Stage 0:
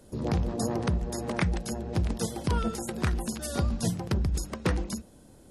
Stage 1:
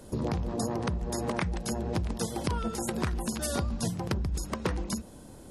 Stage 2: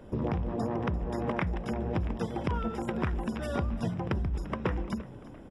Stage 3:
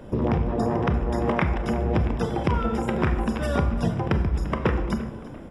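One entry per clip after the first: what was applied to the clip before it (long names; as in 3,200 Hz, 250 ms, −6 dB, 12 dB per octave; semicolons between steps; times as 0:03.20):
parametric band 1,000 Hz +3.5 dB 0.49 octaves; downward compressor, threshold −33 dBFS, peak gain reduction 11.5 dB; level +5.5 dB
Savitzky-Golay smoothing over 25 samples; echo with shifted repeats 344 ms, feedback 44%, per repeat +66 Hz, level −18 dB
convolution reverb RT60 1.1 s, pre-delay 26 ms, DRR 7 dB; level +7 dB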